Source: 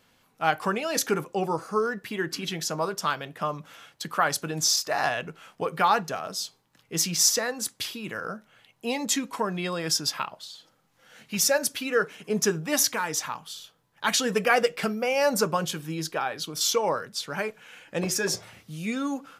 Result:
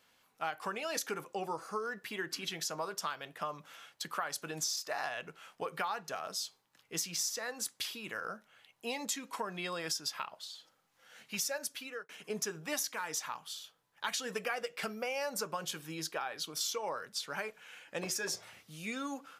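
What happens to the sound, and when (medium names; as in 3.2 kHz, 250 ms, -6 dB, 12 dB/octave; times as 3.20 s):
11.56–12.09 s: fade out
whole clip: bass shelf 340 Hz -11.5 dB; compression 6:1, threshold -29 dBFS; trim -4 dB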